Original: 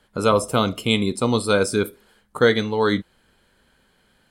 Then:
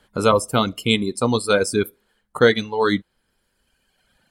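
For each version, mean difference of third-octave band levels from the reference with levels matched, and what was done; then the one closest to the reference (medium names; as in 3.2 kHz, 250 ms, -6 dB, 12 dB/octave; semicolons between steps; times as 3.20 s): 4.0 dB: reverb removal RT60 1.5 s; trim +2 dB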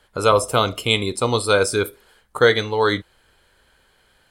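2.5 dB: peaking EQ 210 Hz -11.5 dB 0.99 oct; trim +3.5 dB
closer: second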